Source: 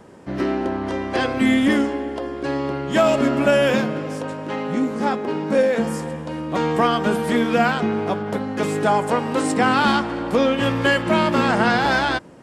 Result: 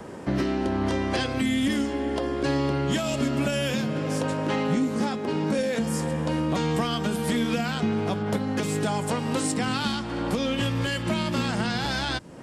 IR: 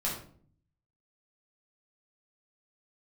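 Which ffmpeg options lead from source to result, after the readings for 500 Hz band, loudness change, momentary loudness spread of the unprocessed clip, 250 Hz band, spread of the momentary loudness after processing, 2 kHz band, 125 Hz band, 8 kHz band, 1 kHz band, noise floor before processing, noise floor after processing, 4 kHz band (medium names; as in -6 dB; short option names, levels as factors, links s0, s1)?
-8.0 dB, -6.0 dB, 9 LU, -4.5 dB, 3 LU, -8.5 dB, +0.5 dB, +1.5 dB, -9.5 dB, -31 dBFS, -32 dBFS, -2.5 dB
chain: -filter_complex "[0:a]acrossover=split=190|3000[s0][s1][s2];[s1]acompressor=threshold=0.0224:ratio=3[s3];[s0][s3][s2]amix=inputs=3:normalize=0,alimiter=limit=0.0841:level=0:latency=1:release=490,volume=2"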